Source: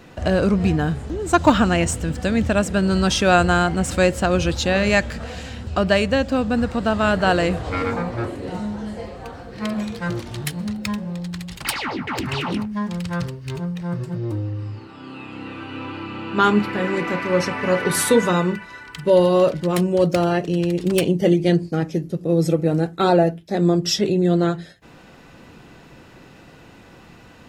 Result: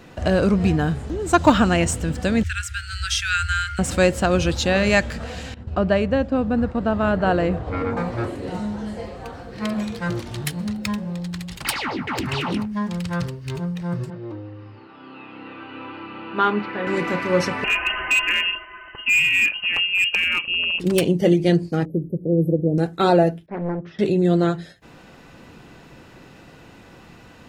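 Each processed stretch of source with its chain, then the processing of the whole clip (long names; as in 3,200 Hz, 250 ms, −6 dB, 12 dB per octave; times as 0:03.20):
0:02.43–0:03.79: Chebyshev band-stop filter 100–1,400 Hz, order 5 + hum removal 56.41 Hz, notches 25
0:05.54–0:07.97: downward expander −28 dBFS + low-pass filter 1,100 Hz 6 dB per octave
0:14.10–0:16.87: high-pass filter 420 Hz 6 dB per octave + high-frequency loss of the air 250 metres
0:17.64–0:20.80: voice inversion scrambler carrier 3,000 Hz + high-frequency loss of the air 170 metres + hard clipping −13.5 dBFS
0:21.85–0:22.78: inverse Chebyshev band-stop filter 1,500–6,100 Hz, stop band 60 dB + parametric band 4,300 Hz −12.5 dB 2.1 octaves
0:23.46–0:23.99: transistor ladder low-pass 1,900 Hz, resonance 40% + highs frequency-modulated by the lows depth 0.86 ms
whole clip: no processing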